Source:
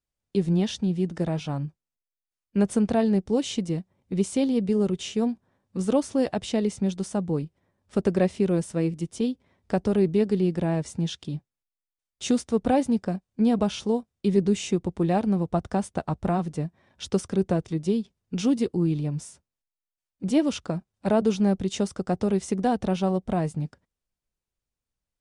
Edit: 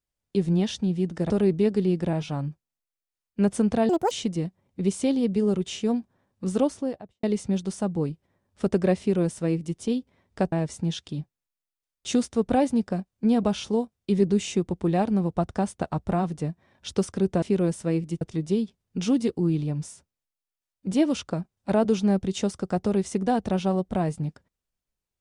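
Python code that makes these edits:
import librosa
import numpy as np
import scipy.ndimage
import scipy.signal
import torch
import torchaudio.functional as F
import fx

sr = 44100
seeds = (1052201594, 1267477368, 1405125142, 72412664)

y = fx.studio_fade_out(x, sr, start_s=5.87, length_s=0.69)
y = fx.edit(y, sr, fx.speed_span(start_s=3.06, length_s=0.38, speed=1.71),
    fx.duplicate(start_s=8.32, length_s=0.79, to_s=17.58),
    fx.move(start_s=9.85, length_s=0.83, to_s=1.3), tone=tone)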